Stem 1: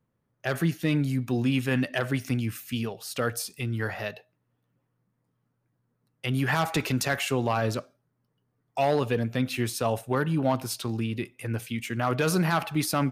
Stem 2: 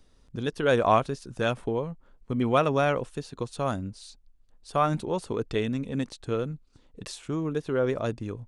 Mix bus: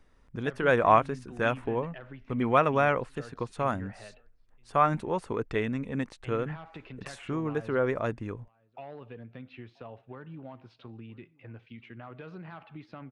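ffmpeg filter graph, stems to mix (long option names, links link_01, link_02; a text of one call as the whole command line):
ffmpeg -i stem1.wav -i stem2.wav -filter_complex "[0:a]lowpass=frequency=3400:width=0.5412,lowpass=frequency=3400:width=1.3066,acompressor=threshold=-28dB:ratio=4,volume=-13dB,asplit=2[link_01][link_02];[link_02]volume=-23.5dB[link_03];[1:a]equalizer=frequency=1000:width_type=o:width=1:gain=4,equalizer=frequency=2000:width_type=o:width=1:gain=8,equalizer=frequency=4000:width_type=o:width=1:gain=-5,volume=-2.5dB[link_04];[link_03]aecho=0:1:983:1[link_05];[link_01][link_04][link_05]amix=inputs=3:normalize=0,highshelf=frequency=3900:gain=-6.5" out.wav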